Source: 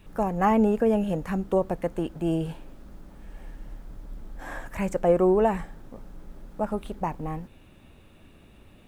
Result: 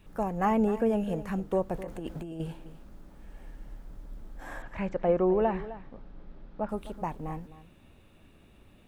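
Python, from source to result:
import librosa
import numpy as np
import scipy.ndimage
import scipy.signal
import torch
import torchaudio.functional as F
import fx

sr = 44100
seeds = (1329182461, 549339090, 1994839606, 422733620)

p1 = fx.over_compress(x, sr, threshold_db=-33.0, ratio=-1.0, at=(1.74, 2.4))
p2 = fx.lowpass(p1, sr, hz=4300.0, slope=24, at=(4.62, 6.69))
p3 = p2 + fx.echo_single(p2, sr, ms=258, db=-15.0, dry=0)
y = p3 * 10.0 ** (-4.5 / 20.0)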